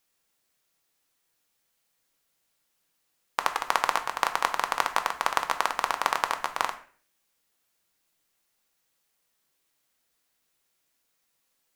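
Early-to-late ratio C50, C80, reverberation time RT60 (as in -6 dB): 12.0 dB, 16.0 dB, 0.45 s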